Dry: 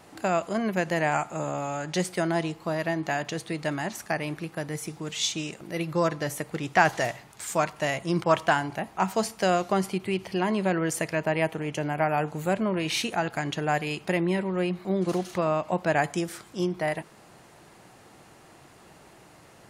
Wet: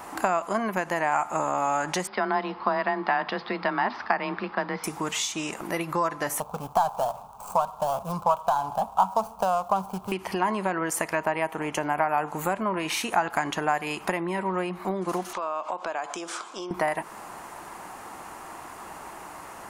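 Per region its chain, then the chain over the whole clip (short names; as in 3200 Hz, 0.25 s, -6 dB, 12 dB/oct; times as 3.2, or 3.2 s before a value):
2.07–4.84 rippled Chebyshev low-pass 5100 Hz, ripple 3 dB + frequency shift +26 Hz
6.4–10.12 median filter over 25 samples + fixed phaser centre 800 Hz, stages 4
15.33–16.71 speaker cabinet 430–7400 Hz, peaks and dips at 840 Hz -4 dB, 1900 Hz -10 dB, 3500 Hz +4 dB + compressor 10:1, threshold -38 dBFS
whole clip: high shelf 11000 Hz +7 dB; compressor 10:1, threshold -32 dBFS; graphic EQ 125/500/1000/4000 Hz -12/-4/+10/-6 dB; gain +9 dB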